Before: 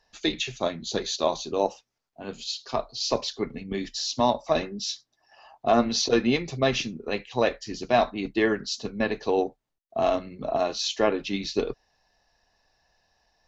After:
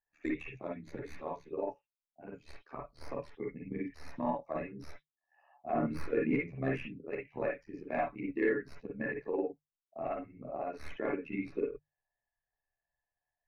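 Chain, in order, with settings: tracing distortion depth 0.08 ms; dynamic bell 700 Hz, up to -6 dB, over -37 dBFS, Q 1.6; AM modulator 75 Hz, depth 95%; resonant high shelf 2.8 kHz -7 dB, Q 3; hum notches 50/100/150 Hz; reverberation, pre-delay 45 ms, DRR -0.5 dB; in parallel at -1 dB: compression, threshold -38 dBFS, peak gain reduction 18 dB; on the sum: saturation -13 dBFS, distortion -20 dB; spectral contrast expander 1.5:1; trim -5.5 dB

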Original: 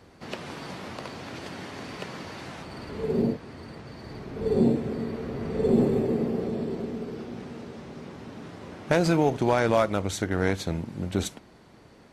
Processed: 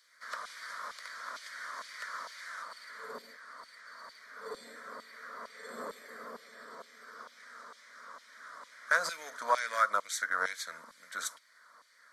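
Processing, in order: LFO high-pass saw down 2.2 Hz 950–2900 Hz; static phaser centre 540 Hz, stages 8

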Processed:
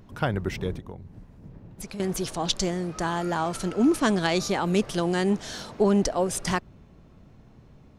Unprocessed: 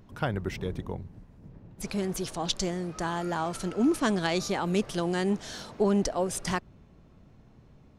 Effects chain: 0.75–2.00 s: compression 6:1, threshold -39 dBFS, peak gain reduction 12.5 dB; trim +3.5 dB

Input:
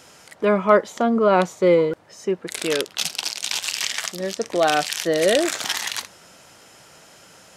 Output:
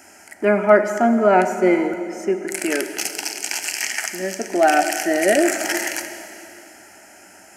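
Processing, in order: high-pass 85 Hz; static phaser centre 740 Hz, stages 8; plate-style reverb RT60 2.8 s, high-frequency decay 0.9×, DRR 7.5 dB; trim +5 dB

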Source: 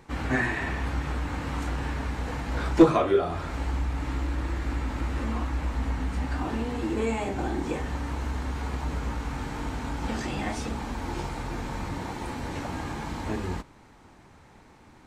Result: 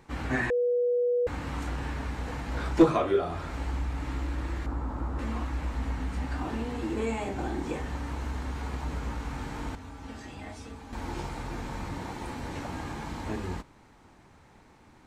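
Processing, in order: 0.50–1.27 s: bleep 487 Hz -19.5 dBFS; 4.66–5.19 s: resonant high shelf 1.6 kHz -10.5 dB, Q 1.5; 9.75–10.93 s: feedback comb 90 Hz, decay 0.21 s, harmonics odd, mix 80%; trim -3 dB

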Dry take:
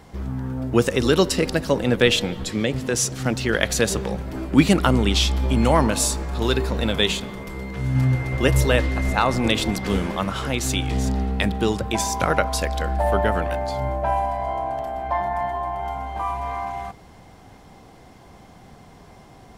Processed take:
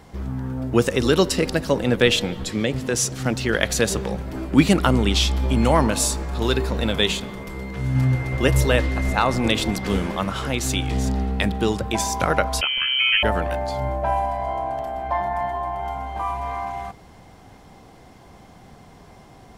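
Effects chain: 12.61–13.23 s: frequency inversion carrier 3.1 kHz

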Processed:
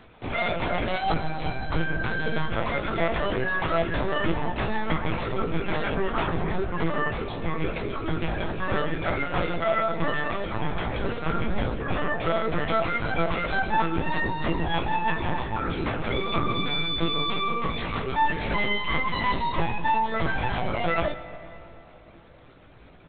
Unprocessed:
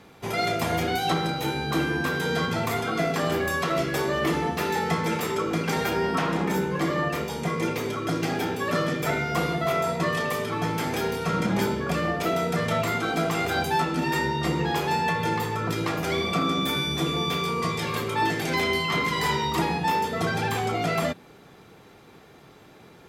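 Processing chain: reverb removal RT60 0.54 s; LPC vocoder at 8 kHz pitch kept; doubling 18 ms -7.5 dB; reverberation RT60 3.2 s, pre-delay 45 ms, DRR 12.5 dB

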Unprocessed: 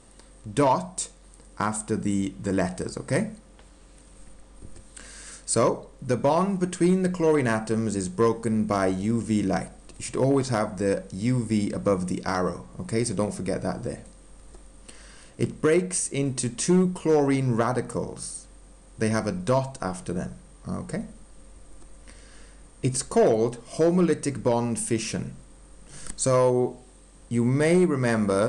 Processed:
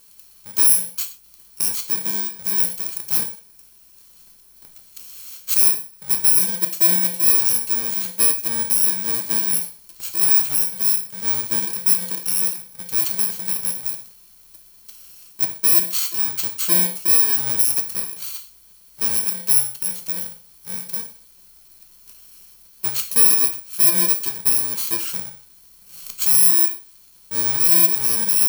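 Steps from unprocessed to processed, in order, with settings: bit-reversed sample order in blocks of 64 samples; tilt EQ +3 dB/octave; gated-style reverb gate 150 ms falling, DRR 5 dB; trim -5.5 dB

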